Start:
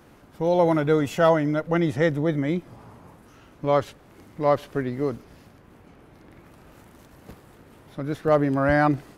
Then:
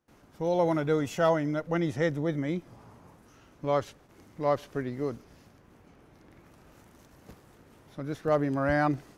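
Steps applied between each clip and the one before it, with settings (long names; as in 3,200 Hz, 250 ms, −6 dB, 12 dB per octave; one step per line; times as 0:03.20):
noise gate with hold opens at −43 dBFS
parametric band 6,000 Hz +5 dB 0.56 octaves
level −6 dB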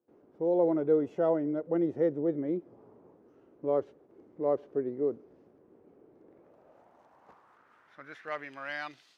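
band-pass filter sweep 400 Hz → 3,800 Hz, 0:06.17–0:09.07
level +4.5 dB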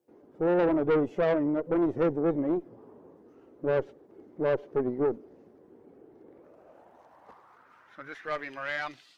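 spectral magnitudes quantised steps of 15 dB
tube saturation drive 27 dB, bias 0.45
level +7 dB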